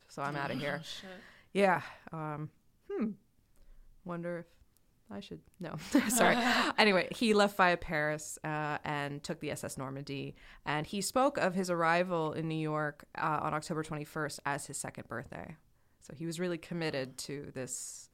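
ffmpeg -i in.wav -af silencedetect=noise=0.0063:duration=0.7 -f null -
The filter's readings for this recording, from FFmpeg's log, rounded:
silence_start: 3.13
silence_end: 4.06 | silence_duration: 0.93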